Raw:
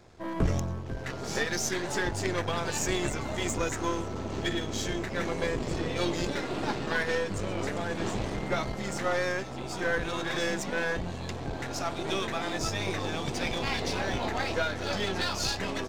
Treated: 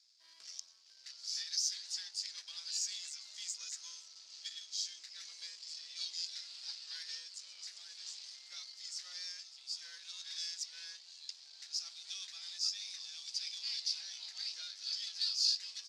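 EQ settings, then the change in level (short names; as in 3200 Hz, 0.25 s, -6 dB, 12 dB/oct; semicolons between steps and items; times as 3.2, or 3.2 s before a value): ladder band-pass 5200 Hz, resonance 70%; +5.0 dB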